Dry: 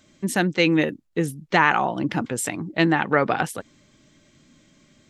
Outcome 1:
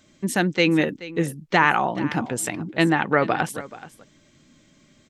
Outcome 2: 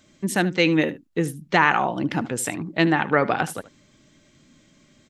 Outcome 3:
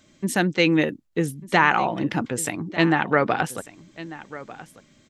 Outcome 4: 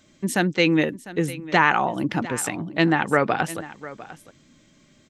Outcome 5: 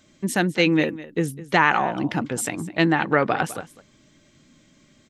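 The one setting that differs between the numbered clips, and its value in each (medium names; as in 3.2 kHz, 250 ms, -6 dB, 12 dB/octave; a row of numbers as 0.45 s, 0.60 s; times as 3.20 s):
delay, time: 429 ms, 75 ms, 1195 ms, 701 ms, 205 ms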